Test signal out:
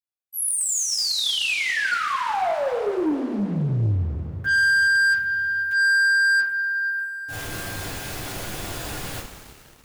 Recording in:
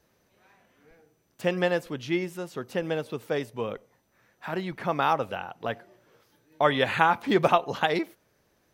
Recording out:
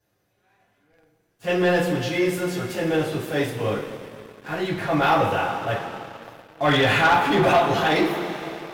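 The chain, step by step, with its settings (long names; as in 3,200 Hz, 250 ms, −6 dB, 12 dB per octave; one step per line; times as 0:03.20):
transient designer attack −8 dB, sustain +3 dB
coupled-rooms reverb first 0.3 s, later 3.7 s, from −17 dB, DRR −9 dB
leveller curve on the samples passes 2
level −8 dB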